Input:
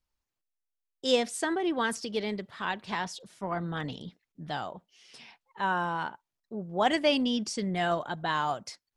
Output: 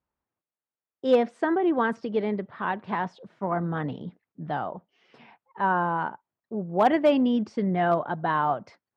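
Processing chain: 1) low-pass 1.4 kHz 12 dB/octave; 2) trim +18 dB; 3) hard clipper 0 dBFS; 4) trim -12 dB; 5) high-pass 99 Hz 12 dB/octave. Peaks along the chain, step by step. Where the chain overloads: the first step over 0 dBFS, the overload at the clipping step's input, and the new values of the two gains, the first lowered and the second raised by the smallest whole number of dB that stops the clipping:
-14.5 dBFS, +3.5 dBFS, 0.0 dBFS, -12.0 dBFS, -10.0 dBFS; step 2, 3.5 dB; step 2 +14 dB, step 4 -8 dB

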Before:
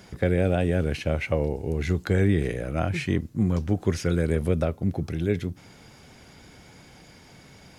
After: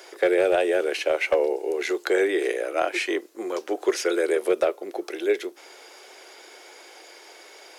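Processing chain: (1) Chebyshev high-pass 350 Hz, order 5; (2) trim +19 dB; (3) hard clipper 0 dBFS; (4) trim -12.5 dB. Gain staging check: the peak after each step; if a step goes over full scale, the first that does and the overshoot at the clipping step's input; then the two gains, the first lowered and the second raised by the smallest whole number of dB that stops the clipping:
-14.5 dBFS, +4.5 dBFS, 0.0 dBFS, -12.5 dBFS; step 2, 4.5 dB; step 2 +14 dB, step 4 -7.5 dB

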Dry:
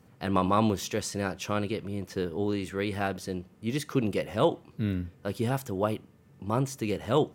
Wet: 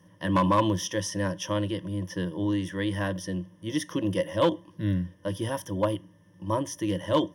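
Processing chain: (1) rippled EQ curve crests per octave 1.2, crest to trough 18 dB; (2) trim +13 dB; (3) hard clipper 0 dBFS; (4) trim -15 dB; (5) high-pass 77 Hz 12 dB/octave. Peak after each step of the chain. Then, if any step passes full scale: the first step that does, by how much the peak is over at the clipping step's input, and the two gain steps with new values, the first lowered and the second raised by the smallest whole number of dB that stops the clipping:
-6.0 dBFS, +7.0 dBFS, 0.0 dBFS, -15.0 dBFS, -12.0 dBFS; step 2, 7.0 dB; step 2 +6 dB, step 4 -8 dB

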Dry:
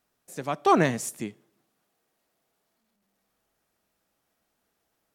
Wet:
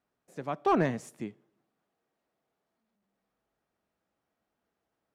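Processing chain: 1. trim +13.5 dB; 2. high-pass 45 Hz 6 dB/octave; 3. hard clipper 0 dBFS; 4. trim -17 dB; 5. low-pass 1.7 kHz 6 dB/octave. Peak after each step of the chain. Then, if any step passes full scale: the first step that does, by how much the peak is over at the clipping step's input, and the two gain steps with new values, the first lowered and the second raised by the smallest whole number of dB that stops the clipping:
+5.5 dBFS, +5.0 dBFS, 0.0 dBFS, -17.0 dBFS, -17.0 dBFS; step 1, 5.0 dB; step 1 +8.5 dB, step 4 -12 dB

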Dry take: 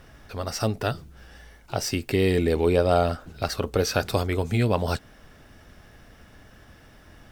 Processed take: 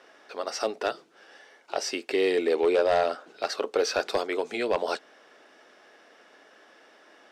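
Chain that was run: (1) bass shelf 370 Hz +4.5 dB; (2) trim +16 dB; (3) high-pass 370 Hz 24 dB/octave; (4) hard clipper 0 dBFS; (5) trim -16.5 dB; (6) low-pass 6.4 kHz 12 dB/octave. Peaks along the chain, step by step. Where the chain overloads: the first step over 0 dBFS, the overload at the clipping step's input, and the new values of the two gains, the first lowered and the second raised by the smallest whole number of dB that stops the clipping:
-6.0 dBFS, +10.0 dBFS, +8.5 dBFS, 0.0 dBFS, -16.5 dBFS, -16.0 dBFS; step 2, 8.5 dB; step 2 +7 dB, step 5 -7.5 dB

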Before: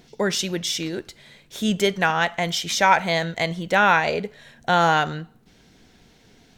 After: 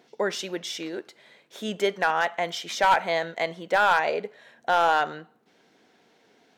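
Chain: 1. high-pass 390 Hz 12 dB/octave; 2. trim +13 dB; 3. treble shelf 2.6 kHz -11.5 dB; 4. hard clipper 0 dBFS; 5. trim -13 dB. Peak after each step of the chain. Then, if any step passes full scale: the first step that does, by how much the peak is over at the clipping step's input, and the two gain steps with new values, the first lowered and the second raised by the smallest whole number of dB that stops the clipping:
-3.0 dBFS, +10.0 dBFS, +7.5 dBFS, 0.0 dBFS, -13.0 dBFS; step 2, 7.5 dB; step 2 +5 dB, step 5 -5 dB

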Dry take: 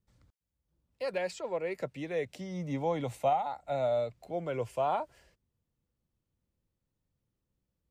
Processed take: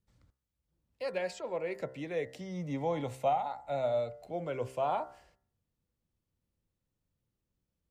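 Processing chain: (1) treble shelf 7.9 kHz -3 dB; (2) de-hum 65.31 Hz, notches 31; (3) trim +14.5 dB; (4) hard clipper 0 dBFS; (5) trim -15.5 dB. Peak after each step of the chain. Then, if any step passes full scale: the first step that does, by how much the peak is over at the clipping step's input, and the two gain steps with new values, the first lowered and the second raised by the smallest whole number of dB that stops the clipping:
-18.0 dBFS, -18.0 dBFS, -3.5 dBFS, -3.5 dBFS, -19.0 dBFS; nothing clips

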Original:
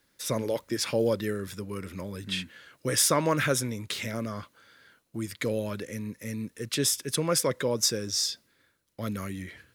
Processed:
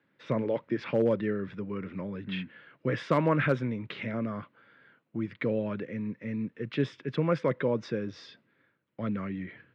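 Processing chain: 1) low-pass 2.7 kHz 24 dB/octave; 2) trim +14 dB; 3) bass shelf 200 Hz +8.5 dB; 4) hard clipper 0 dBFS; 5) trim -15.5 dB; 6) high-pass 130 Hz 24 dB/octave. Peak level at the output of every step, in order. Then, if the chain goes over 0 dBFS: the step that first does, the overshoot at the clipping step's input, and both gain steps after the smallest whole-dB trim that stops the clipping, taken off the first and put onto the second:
-11.0 dBFS, +3.0 dBFS, +3.5 dBFS, 0.0 dBFS, -15.5 dBFS, -11.0 dBFS; step 2, 3.5 dB; step 2 +10 dB, step 5 -11.5 dB

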